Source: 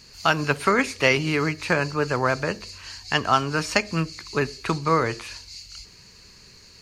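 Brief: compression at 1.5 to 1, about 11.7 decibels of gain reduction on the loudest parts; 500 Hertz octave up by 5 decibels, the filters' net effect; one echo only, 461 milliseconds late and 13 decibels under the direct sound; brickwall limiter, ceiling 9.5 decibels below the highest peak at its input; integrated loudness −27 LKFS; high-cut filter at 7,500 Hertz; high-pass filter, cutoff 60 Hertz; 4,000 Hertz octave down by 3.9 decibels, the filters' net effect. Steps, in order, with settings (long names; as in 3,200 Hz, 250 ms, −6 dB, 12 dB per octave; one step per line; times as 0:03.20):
high-pass filter 60 Hz
low-pass filter 7,500 Hz
parametric band 500 Hz +6 dB
parametric band 4,000 Hz −5.5 dB
downward compressor 1.5 to 1, threshold −46 dBFS
brickwall limiter −22.5 dBFS
single-tap delay 461 ms −13 dB
level +8 dB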